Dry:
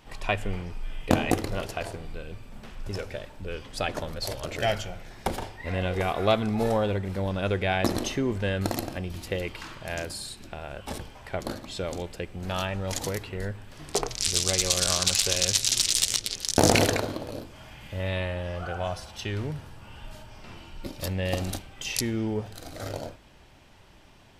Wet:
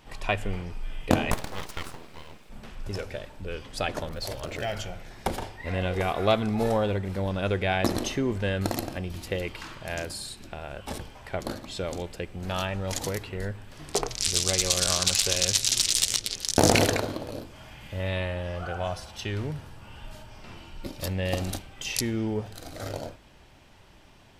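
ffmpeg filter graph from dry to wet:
-filter_complex "[0:a]asettb=1/sr,asplit=3[a][b][c];[a]atrim=end=1.314[d];[b]atrim=start=1.31:end=2.5,asetpts=PTS-STARTPTS,afade=t=in:d=0.004:c=qsin,afade=t=out:st=1.186:d=0.004:c=qsin,highpass=f=180:p=1,aeval=exprs='abs(val(0))':c=same,acrusher=bits=8:mode=log:mix=0:aa=0.000001[e];[c]atrim=start=2.496[f];[d][e]acrossfade=d=0.004:c1=hsin:c2=qsin[g];[g][f]acrossfade=d=0.004:c1=qsin:c2=hsin,asettb=1/sr,asplit=3[h][i][j];[h]atrim=end=4.094[k];[i]atrim=start=4.09:end=4.77,asetpts=PTS-STARTPTS,afade=t=in:d=0.004:c=qsin,afade=t=out:st=0.676:d=0.004:c=qsin,acompressor=threshold=-28dB:ratio=2.5:attack=3.2:release=140:knee=1:detection=peak,acrusher=bits=8:mode=log:mix=0:aa=0.000001,adynamicequalizer=threshold=0.00355:dfrequency=3600:dqfactor=0.7:tfrequency=3600:tqfactor=0.7:attack=5:release=100:ratio=0.375:range=2:mode=cutabove:tftype=highshelf[l];[j]atrim=start=4.766[m];[k][l]acrossfade=d=0.004:c1=hsin:c2=qsin[n];[n][m]acrossfade=d=0.004:c1=qsin:c2=hsin"

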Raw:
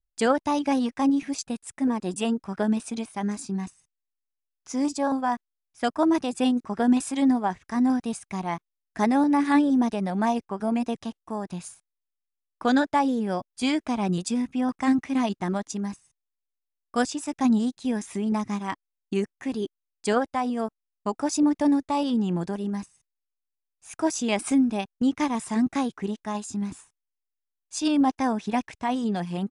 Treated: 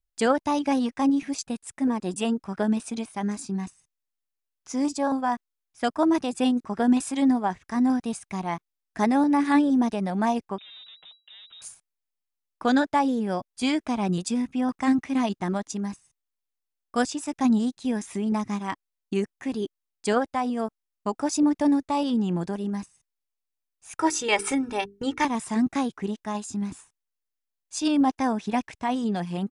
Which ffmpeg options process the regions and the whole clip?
-filter_complex "[0:a]asettb=1/sr,asplit=3[a][b][c];[a]atrim=end=10.584[d];[b]atrim=start=10.58:end=11.62,asetpts=PTS-STARTPTS,afade=t=in:d=0.004:c=qsin,afade=t=out:st=1.036:d=0.004:c=qsin,aeval=exprs='(tanh(112*val(0)+0.65)-tanh(0.65))/112':c=same,acompressor=threshold=-44dB:ratio=4:attack=3.2:release=140:knee=1:detection=peak,lowpass=f=3.3k:t=q:w=0.5098,lowpass=f=3.3k:t=q:w=0.6013,lowpass=f=3.3k:t=q:w=0.9,lowpass=f=3.3k:t=q:w=2.563,afreqshift=-3900[e];[c]atrim=start=11.616[f];[d][e]acrossfade=d=0.004:c1=hsin:c2=qsin[g];[g][f]acrossfade=d=0.004:c1=qsin:c2=hsin,asettb=1/sr,asplit=3[h][i][j];[h]atrim=end=23.984[k];[i]atrim=start=23.98:end=25.25,asetpts=PTS-STARTPTS,afade=t=in:d=0.004:c=qsin,afade=t=out:st=1.266:d=0.004:c=qsin,equalizer=f=1.7k:w=1.1:g=6.5,bandreject=f=50:t=h:w=6,bandreject=f=100:t=h:w=6,bandreject=f=150:t=h:w=6,bandreject=f=200:t=h:w=6,bandreject=f=250:t=h:w=6,bandreject=f=300:t=h:w=6,bandreject=f=350:t=h:w=6,bandreject=f=400:t=h:w=6,bandreject=f=450:t=h:w=6,aecho=1:1:2.2:0.77,atrim=end_sample=56007[l];[j]atrim=start=25.246[m];[k][l]acrossfade=d=0.004:c1=hsin:c2=qsin[n];[n][m]acrossfade=d=0.004:c1=qsin:c2=hsin"

